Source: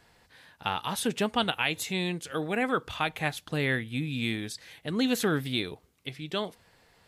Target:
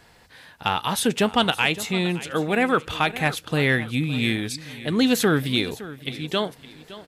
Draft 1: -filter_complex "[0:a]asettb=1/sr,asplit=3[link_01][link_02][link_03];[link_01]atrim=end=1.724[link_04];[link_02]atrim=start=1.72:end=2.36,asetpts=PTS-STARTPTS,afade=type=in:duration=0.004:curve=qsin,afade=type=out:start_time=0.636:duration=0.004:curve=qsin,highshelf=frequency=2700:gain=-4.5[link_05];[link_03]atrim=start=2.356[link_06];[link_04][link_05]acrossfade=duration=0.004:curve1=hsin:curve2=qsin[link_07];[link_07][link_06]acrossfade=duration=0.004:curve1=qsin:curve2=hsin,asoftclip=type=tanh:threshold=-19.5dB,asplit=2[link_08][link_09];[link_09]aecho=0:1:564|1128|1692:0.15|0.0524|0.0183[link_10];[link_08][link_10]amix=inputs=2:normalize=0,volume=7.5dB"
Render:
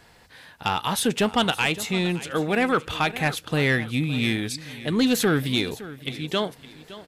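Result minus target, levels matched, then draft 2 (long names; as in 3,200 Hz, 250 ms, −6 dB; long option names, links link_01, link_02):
soft clipping: distortion +11 dB
-filter_complex "[0:a]asettb=1/sr,asplit=3[link_01][link_02][link_03];[link_01]atrim=end=1.724[link_04];[link_02]atrim=start=1.72:end=2.36,asetpts=PTS-STARTPTS,afade=type=in:duration=0.004:curve=qsin,afade=type=out:start_time=0.636:duration=0.004:curve=qsin,highshelf=frequency=2700:gain=-4.5[link_05];[link_03]atrim=start=2.356[link_06];[link_04][link_05]acrossfade=duration=0.004:curve1=hsin:curve2=qsin[link_07];[link_07][link_06]acrossfade=duration=0.004:curve1=qsin:curve2=hsin,asoftclip=type=tanh:threshold=-12dB,asplit=2[link_08][link_09];[link_09]aecho=0:1:564|1128|1692:0.15|0.0524|0.0183[link_10];[link_08][link_10]amix=inputs=2:normalize=0,volume=7.5dB"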